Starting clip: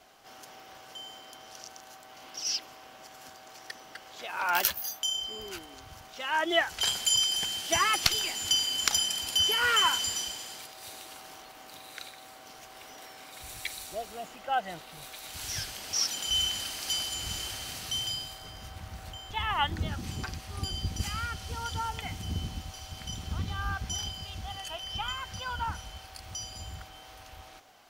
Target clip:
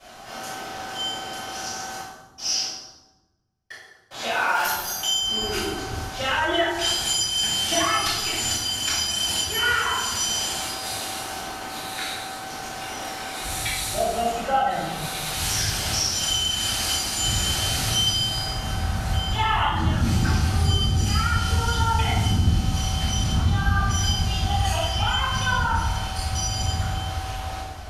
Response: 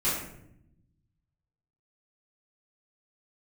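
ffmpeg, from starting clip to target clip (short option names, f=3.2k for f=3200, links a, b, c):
-filter_complex "[0:a]asettb=1/sr,asplit=3[a][b][c];[a]atrim=end=2.004[d];[b]atrim=start=2:end=4.11,asetpts=PTS-STARTPTS,afade=t=in:d=0.004:c=qsin,afade=t=out:st=2.106:d=0.004:c=qsin,agate=range=-58dB:threshold=-37dB:ratio=16:detection=peak[e];[c]atrim=start=4.106[f];[d][e]acrossfade=d=0.004:c1=hsin:c2=qsin[g];[g][f]acrossfade=d=0.004:c1=qsin:c2=hsin,acompressor=threshold=-35dB:ratio=8[h];[1:a]atrim=start_sample=2205,asetrate=26901,aresample=44100[i];[h][i]afir=irnorm=-1:irlink=0,volume=2dB"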